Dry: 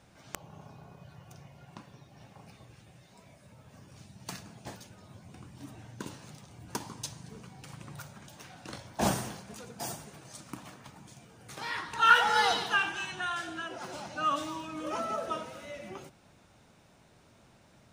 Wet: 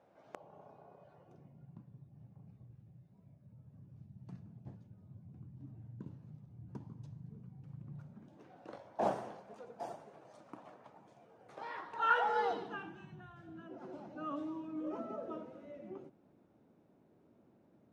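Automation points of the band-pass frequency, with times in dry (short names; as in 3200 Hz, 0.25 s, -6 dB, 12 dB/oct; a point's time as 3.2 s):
band-pass, Q 1.5
1.13 s 570 Hz
1.75 s 130 Hz
7.83 s 130 Hz
8.75 s 600 Hz
12.23 s 600 Hz
13.34 s 110 Hz
13.85 s 310 Hz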